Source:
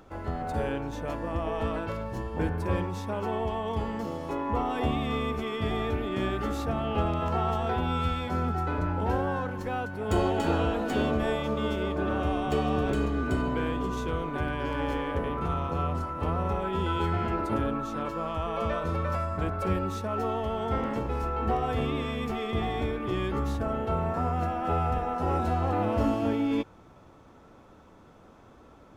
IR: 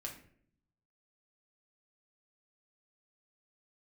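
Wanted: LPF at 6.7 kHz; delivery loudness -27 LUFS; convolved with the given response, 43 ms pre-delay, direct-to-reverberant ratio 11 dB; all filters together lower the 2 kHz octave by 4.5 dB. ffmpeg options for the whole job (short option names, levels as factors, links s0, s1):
-filter_complex "[0:a]lowpass=6700,equalizer=f=2000:t=o:g=-6.5,asplit=2[s0][s1];[1:a]atrim=start_sample=2205,adelay=43[s2];[s1][s2]afir=irnorm=-1:irlink=0,volume=0.355[s3];[s0][s3]amix=inputs=2:normalize=0,volume=1.33"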